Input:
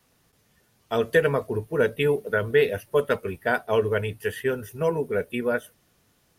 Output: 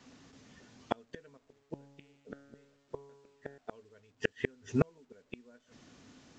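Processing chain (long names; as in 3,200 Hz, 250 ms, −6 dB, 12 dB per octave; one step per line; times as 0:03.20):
high-pass filter 76 Hz 6 dB per octave
parametric band 260 Hz +13.5 dB 0.36 octaves
gate with flip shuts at −19 dBFS, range −42 dB
0:01.37–0:03.58: tuned comb filter 140 Hz, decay 1.3 s, mix 80%
level +5.5 dB
A-law companding 128 kbit/s 16,000 Hz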